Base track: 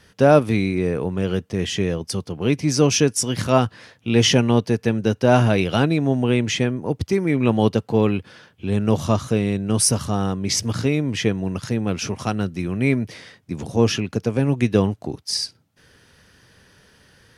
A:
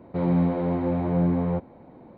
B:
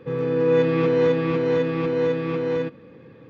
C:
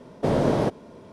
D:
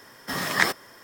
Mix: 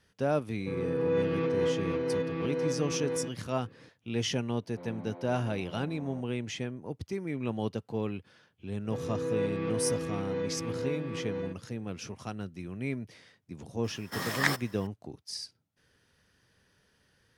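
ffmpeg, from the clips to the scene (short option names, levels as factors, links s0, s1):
-filter_complex "[2:a]asplit=2[s0][s1];[0:a]volume=0.178[s2];[1:a]highpass=f=400:p=1[s3];[s0]atrim=end=3.29,asetpts=PTS-STARTPTS,volume=0.335,afade=t=in:d=0.004:c=hsin,afade=t=out:st=3.286:d=0.004:c=hsin,adelay=600[s4];[s3]atrim=end=2.17,asetpts=PTS-STARTPTS,volume=0.158,afade=t=in:d=0.004:c=hsin,afade=t=out:st=2.166:d=0.004:c=hsin,adelay=4620[s5];[s1]atrim=end=3.29,asetpts=PTS-STARTPTS,volume=0.237,afade=t=in:d=0.004:c=hsin,afade=t=out:st=3.286:d=0.004:c=hsin,adelay=8840[s6];[4:a]atrim=end=1.03,asetpts=PTS-STARTPTS,volume=0.501,afade=t=in:d=0.004:c=hsin,afade=t=out:st=1.026:d=0.004:c=hsin,adelay=13840[s7];[s2][s4][s5][s6][s7]amix=inputs=5:normalize=0"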